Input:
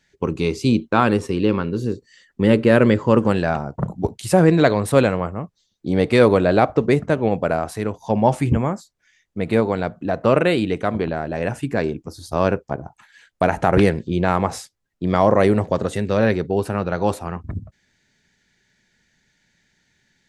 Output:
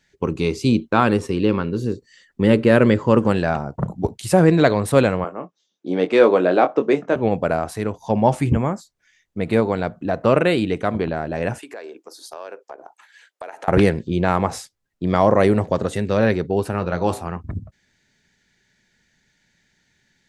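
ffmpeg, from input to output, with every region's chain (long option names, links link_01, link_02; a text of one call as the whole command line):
ffmpeg -i in.wav -filter_complex "[0:a]asettb=1/sr,asplit=3[link_01][link_02][link_03];[link_01]atrim=end=5.244[link_04];[link_02]atrim=start=5.24:end=7.16,asetpts=PTS-STARTPTS,afade=type=in:duration=0.004:curve=qsin,afade=type=out:start_time=1.916:duration=0.004:curve=qsin,highpass=frequency=220:width=0.5412,highpass=frequency=220:width=1.3066,equalizer=frequency=220:width_type=q:width=4:gain=-5,equalizer=frequency=2000:width_type=q:width=4:gain=-4,equalizer=frequency=4400:width_type=q:width=4:gain=-9,lowpass=frequency=6400:width=0.5412,lowpass=frequency=6400:width=1.3066,asplit=2[link_05][link_06];[link_06]adelay=22,volume=-8dB[link_07];[link_05][link_07]amix=inputs=2:normalize=0,atrim=end_sample=84672[link_08];[link_03]atrim=start=7.156[link_09];[link_04][link_08]acrossfade=duration=0.004:curve1=hsin:curve2=qsin[link_10];[link_10][link_09]acrossfade=duration=0.004:curve1=qsin:curve2=hsin,asettb=1/sr,asplit=3[link_11][link_12][link_13];[link_11]atrim=end=11.584[link_14];[link_12]atrim=start=11.58:end=13.68,asetpts=PTS-STARTPTS,afade=type=in:duration=0.004:curve=qsin,afade=type=out:start_time=2.096:duration=0.004:curve=qsin,highpass=frequency=390:width=0.5412,highpass=frequency=390:width=1.3066,acompressor=threshold=-33dB:ratio=4:attack=3.2:release=140:knee=1:detection=peak[link_15];[link_13]atrim=start=13.676[link_16];[link_14][link_15]acrossfade=duration=0.004:curve1=hsin:curve2=qsin[link_17];[link_17][link_16]acrossfade=duration=0.004:curve1=qsin:curve2=hsin,asettb=1/sr,asplit=3[link_18][link_19][link_20];[link_18]atrim=end=16.714[link_21];[link_19]atrim=start=16.71:end=17.22,asetpts=PTS-STARTPTS,afade=type=in:duration=0.004:curve=qsin,afade=type=out:start_time=0.506:duration=0.004:curve=qsin,asplit=2[link_22][link_23];[link_23]adelay=22,volume=-12dB[link_24];[link_22][link_24]amix=inputs=2:normalize=0,atrim=end_sample=22491,bandreject=frequency=56.35:width_type=h:width=4,bandreject=frequency=112.7:width_type=h:width=4,bandreject=frequency=169.05:width_type=h:width=4,bandreject=frequency=225.4:width_type=h:width=4,bandreject=frequency=281.75:width_type=h:width=4,bandreject=frequency=338.1:width_type=h:width=4,bandreject=frequency=394.45:width_type=h:width=4,bandreject=frequency=450.8:width_type=h:width=4,bandreject=frequency=507.15:width_type=h:width=4,bandreject=frequency=563.5:width_type=h:width=4,bandreject=frequency=619.85:width_type=h:width=4,bandreject=frequency=676.2:width_type=h:width=4,bandreject=frequency=732.55:width_type=h:width=4,bandreject=frequency=788.9:width_type=h:width=4,bandreject=frequency=845.25:width_type=h:width=4,bandreject=frequency=901.6:width_type=h:width=4,bandreject=frequency=957.95:width_type=h:width=4,bandreject=frequency=1014.3:width_type=h:width=4,bandreject=frequency=1070.65:width_type=h:width=4,bandreject=frequency=1127:width_type=h:width=4,bandreject=frequency=1183.35:width_type=h:width=4,bandreject=frequency=1239.7:width_type=h:width=4,bandreject=frequency=1296.05:width_type=h:width=4[link_25];[link_20]atrim=start=17.216[link_26];[link_21][link_25]acrossfade=duration=0.004:curve1=hsin:curve2=qsin[link_27];[link_27][link_26]acrossfade=duration=0.004:curve1=qsin:curve2=hsin" out.wav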